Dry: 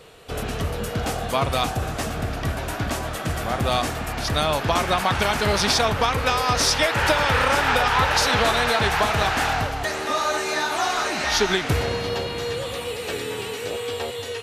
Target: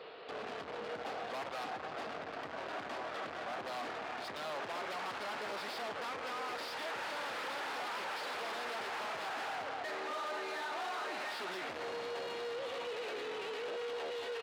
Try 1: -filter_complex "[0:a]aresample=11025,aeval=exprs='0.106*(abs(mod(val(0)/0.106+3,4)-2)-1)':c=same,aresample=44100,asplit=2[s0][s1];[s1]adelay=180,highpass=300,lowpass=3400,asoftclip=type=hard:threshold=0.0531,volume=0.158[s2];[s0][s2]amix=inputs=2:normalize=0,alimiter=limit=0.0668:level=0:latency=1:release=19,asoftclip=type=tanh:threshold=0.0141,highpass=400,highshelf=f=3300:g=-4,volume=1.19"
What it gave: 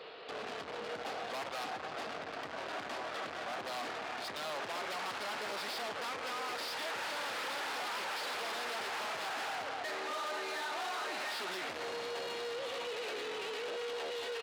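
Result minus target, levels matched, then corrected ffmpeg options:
8 kHz band +4.5 dB
-filter_complex "[0:a]aresample=11025,aeval=exprs='0.106*(abs(mod(val(0)/0.106+3,4)-2)-1)':c=same,aresample=44100,asplit=2[s0][s1];[s1]adelay=180,highpass=300,lowpass=3400,asoftclip=type=hard:threshold=0.0531,volume=0.158[s2];[s0][s2]amix=inputs=2:normalize=0,alimiter=limit=0.0668:level=0:latency=1:release=19,asoftclip=type=tanh:threshold=0.0141,highpass=400,highshelf=f=3300:g=-11.5,volume=1.19"

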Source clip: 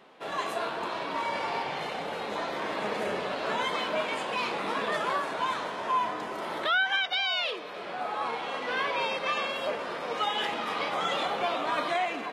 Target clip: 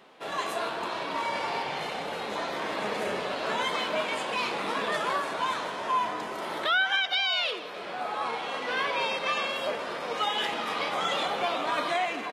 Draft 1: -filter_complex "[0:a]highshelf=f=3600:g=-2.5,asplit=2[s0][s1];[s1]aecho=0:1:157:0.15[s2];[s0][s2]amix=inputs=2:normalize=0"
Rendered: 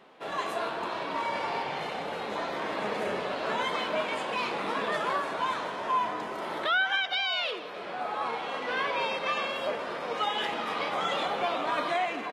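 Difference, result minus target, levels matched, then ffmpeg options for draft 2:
8 kHz band -4.5 dB
-filter_complex "[0:a]highshelf=f=3600:g=4.5,asplit=2[s0][s1];[s1]aecho=0:1:157:0.15[s2];[s0][s2]amix=inputs=2:normalize=0"

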